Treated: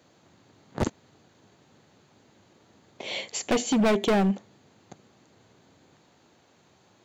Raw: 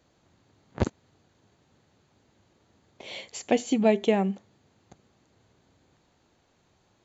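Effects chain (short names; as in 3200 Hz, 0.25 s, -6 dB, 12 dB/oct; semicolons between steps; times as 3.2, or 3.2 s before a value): HPF 120 Hz 12 dB/oct; hard clip -25.5 dBFS, distortion -5 dB; gain +6.5 dB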